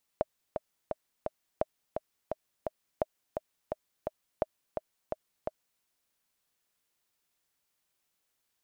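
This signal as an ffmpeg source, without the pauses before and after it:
ffmpeg -f lavfi -i "aevalsrc='pow(10,(-13.5-5.5*gte(mod(t,4*60/171),60/171))/20)*sin(2*PI*624*mod(t,60/171))*exp(-6.91*mod(t,60/171)/0.03)':duration=5.61:sample_rate=44100" out.wav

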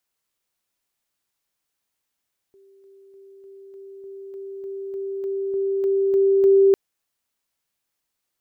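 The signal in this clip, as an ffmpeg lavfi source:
ffmpeg -f lavfi -i "aevalsrc='pow(10,(-50+3*floor(t/0.3))/20)*sin(2*PI*391*t)':duration=4.2:sample_rate=44100" out.wav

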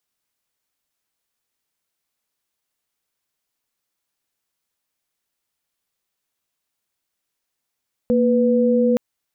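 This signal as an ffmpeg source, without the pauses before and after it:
ffmpeg -f lavfi -i "aevalsrc='0.15*(sin(2*PI*233.08*t)+sin(2*PI*493.88*t))':duration=0.87:sample_rate=44100" out.wav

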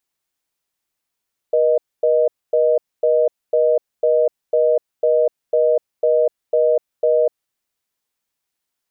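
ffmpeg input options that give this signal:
ffmpeg -f lavfi -i "aevalsrc='0.178*(sin(2*PI*480*t)+sin(2*PI*620*t))*clip(min(mod(t,0.5),0.25-mod(t,0.5))/0.005,0,1)':duration=5.84:sample_rate=44100" out.wav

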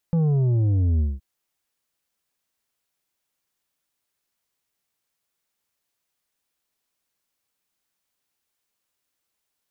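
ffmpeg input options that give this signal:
ffmpeg -f lavfi -i "aevalsrc='0.126*clip((1.07-t)/0.2,0,1)*tanh(2.24*sin(2*PI*170*1.07/log(65/170)*(exp(log(65/170)*t/1.07)-1)))/tanh(2.24)':duration=1.07:sample_rate=44100" out.wav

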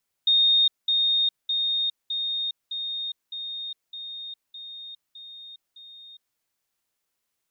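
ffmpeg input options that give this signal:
ffmpeg -f lavfi -i "aevalsrc='pow(10,(-16-3*floor(t/0.61))/20)*sin(2*PI*3690*t)*clip(min(mod(t,0.61),0.41-mod(t,0.61))/0.005,0,1)':duration=6.1:sample_rate=44100" out.wav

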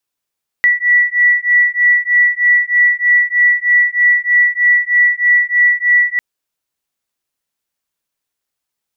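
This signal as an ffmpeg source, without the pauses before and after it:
ffmpeg -f lavfi -i "aevalsrc='0.251*(sin(2*PI*1950*t)+sin(2*PI*1953.2*t))':duration=5.55:sample_rate=44100" out.wav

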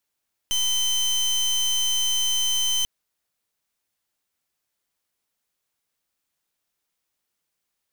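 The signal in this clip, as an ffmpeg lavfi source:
ffmpeg -f lavfi -i "aevalsrc='0.075*(2*lt(mod(3080*t,1),0.27)-1)':duration=2.34:sample_rate=44100" out.wav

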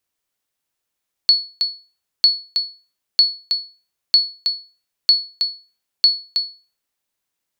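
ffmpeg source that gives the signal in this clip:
ffmpeg -f lavfi -i "aevalsrc='0.596*(sin(2*PI*4400*mod(t,0.95))*exp(-6.91*mod(t,0.95)/0.34)+0.447*sin(2*PI*4400*max(mod(t,0.95)-0.32,0))*exp(-6.91*max(mod(t,0.95)-0.32,0)/0.34))':duration=5.7:sample_rate=44100" out.wav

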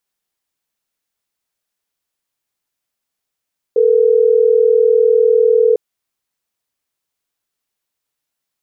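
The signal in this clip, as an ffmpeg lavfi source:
ffmpeg -f lavfi -i "aevalsrc='0.282*(sin(2*PI*440*t)+sin(2*PI*480*t))*clip(min(mod(t,6),2-mod(t,6))/0.005,0,1)':duration=3.12:sample_rate=44100" out.wav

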